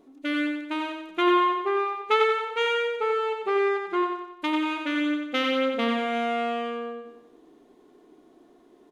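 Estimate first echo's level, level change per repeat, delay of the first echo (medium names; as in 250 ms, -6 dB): -5.0 dB, -6.5 dB, 91 ms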